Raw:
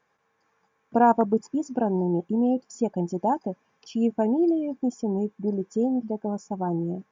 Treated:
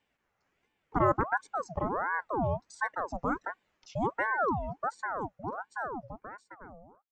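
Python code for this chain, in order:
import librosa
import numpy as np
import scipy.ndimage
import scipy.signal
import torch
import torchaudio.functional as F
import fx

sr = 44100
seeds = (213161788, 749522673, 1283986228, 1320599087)

y = fx.fade_out_tail(x, sr, length_s=2.32)
y = fx.ring_lfo(y, sr, carrier_hz=830.0, swing_pct=60, hz=1.4)
y = y * 10.0 ** (-4.5 / 20.0)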